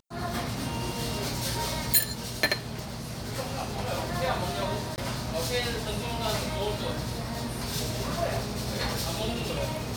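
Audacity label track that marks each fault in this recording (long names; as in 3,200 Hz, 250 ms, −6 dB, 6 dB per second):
4.960000	4.980000	drop-out 19 ms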